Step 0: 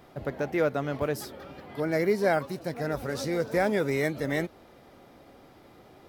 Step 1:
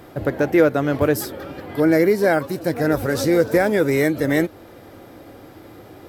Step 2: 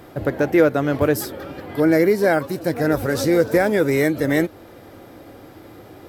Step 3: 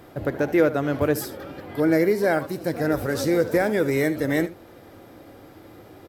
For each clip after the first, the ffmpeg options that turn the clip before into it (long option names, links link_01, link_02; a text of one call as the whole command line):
ffmpeg -i in.wav -af "alimiter=limit=-17dB:level=0:latency=1:release=362,equalizer=frequency=100:width_type=o:width=0.33:gain=11,equalizer=frequency=315:width_type=o:width=0.33:gain=8,equalizer=frequency=500:width_type=o:width=0.33:gain=4,equalizer=frequency=1600:width_type=o:width=0.33:gain=4,equalizer=frequency=8000:width_type=o:width=0.33:gain=4,equalizer=frequency=12500:width_type=o:width=0.33:gain=9,volume=8dB" out.wav
ffmpeg -i in.wav -af anull out.wav
ffmpeg -i in.wav -af "aecho=1:1:74:0.178,volume=-4dB" out.wav